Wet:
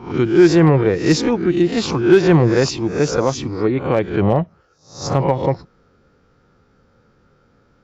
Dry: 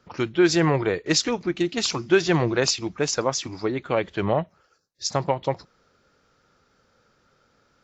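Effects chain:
peak hold with a rise ahead of every peak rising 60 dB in 0.45 s
high-shelf EQ 3,800 Hz −9.5 dB
notch filter 620 Hz, Q 12
hard clipping −10.5 dBFS, distortion −26 dB
low-shelf EQ 480 Hz +9.5 dB
level +1.5 dB

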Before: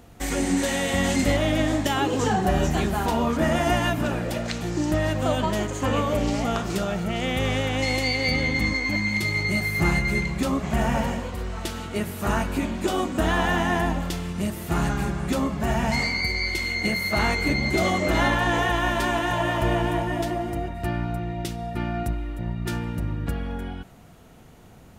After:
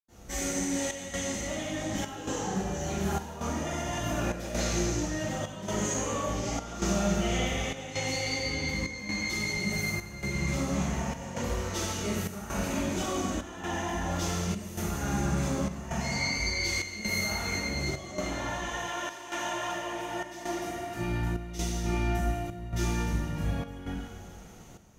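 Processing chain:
parametric band 6,200 Hz +13 dB 0.34 octaves
compressor whose output falls as the input rises −27 dBFS, ratio −1
0:18.48–0:20.88: high-pass filter 550 Hz 6 dB per octave
convolution reverb RT60 1.6 s, pre-delay 82 ms
square-wave tremolo 0.88 Hz, depth 65%, duty 80%
level +2 dB

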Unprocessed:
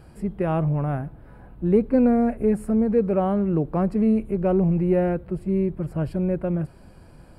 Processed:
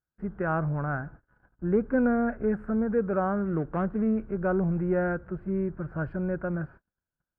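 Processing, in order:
0:03.47–0:03.99: running median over 25 samples
low-pass with resonance 1,500 Hz, resonance Q 6.3
noise gate −39 dBFS, range −40 dB
level −6.5 dB

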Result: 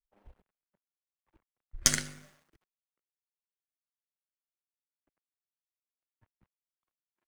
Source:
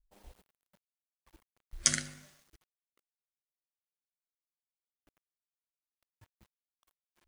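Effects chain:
gain on one half-wave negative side −7 dB
multiband upward and downward expander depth 70%
level −1.5 dB

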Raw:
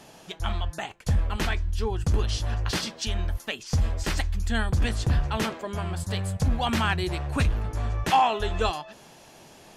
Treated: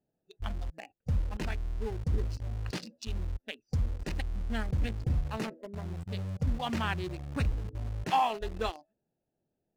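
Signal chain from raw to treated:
adaptive Wiener filter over 41 samples
noise reduction from a noise print of the clip's start 20 dB
in parallel at −9 dB: bit reduction 5 bits
on the sum: high-shelf EQ 11,000 Hz −10 dB
level −8.5 dB

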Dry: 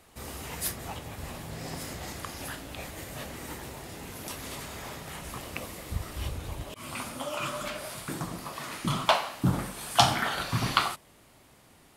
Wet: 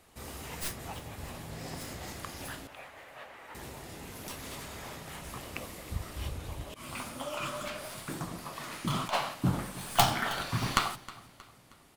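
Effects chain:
stylus tracing distortion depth 0.2 ms
0:02.67–0:03.55: three-way crossover with the lows and the highs turned down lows −21 dB, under 520 Hz, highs −18 dB, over 2,900 Hz
0:08.94–0:09.34: compressor whose output falls as the input rises −25 dBFS, ratio −0.5
repeating echo 315 ms, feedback 44%, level −19 dB
level −3 dB

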